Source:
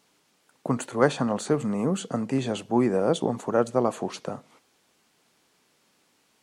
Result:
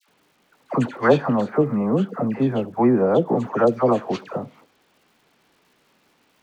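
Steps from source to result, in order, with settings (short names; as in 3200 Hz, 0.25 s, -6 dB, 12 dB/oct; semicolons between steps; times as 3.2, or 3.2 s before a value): LPF 3000 Hz 12 dB/oct, from 1.4 s 1700 Hz, from 3.35 s 3400 Hz; crackle 280/s -56 dBFS; dispersion lows, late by 88 ms, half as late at 1100 Hz; gain +5.5 dB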